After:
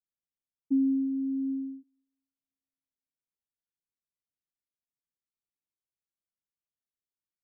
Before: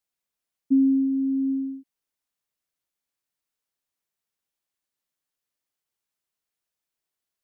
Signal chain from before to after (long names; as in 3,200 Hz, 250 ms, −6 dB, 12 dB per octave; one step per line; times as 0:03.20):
coupled-rooms reverb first 0.54 s, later 1.6 s, DRR 19 dB
low-pass that shuts in the quiet parts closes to 300 Hz, open at −19.5 dBFS
level −6.5 dB